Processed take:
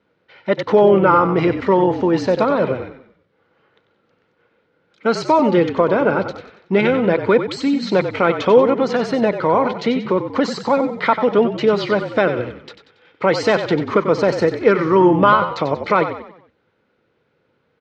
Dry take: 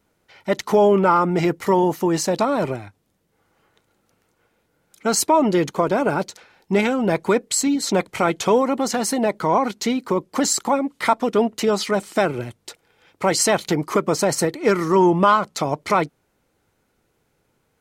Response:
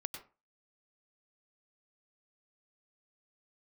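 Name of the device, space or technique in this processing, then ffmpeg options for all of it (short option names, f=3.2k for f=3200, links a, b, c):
frequency-shifting delay pedal into a guitar cabinet: -filter_complex "[0:a]asplit=6[a][b][c][d][e][f];[b]adelay=93,afreqshift=-44,volume=-9.5dB[g];[c]adelay=186,afreqshift=-88,volume=-16.8dB[h];[d]adelay=279,afreqshift=-132,volume=-24.2dB[i];[e]adelay=372,afreqshift=-176,volume=-31.5dB[j];[f]adelay=465,afreqshift=-220,volume=-38.8dB[k];[a][g][h][i][j][k]amix=inputs=6:normalize=0,highpass=110,equalizer=f=500:t=q:w=4:g=6,equalizer=f=740:t=q:w=4:g=-4,equalizer=f=1.5k:t=q:w=4:g=3,lowpass=f=4k:w=0.5412,lowpass=f=4k:w=1.3066,volume=2dB"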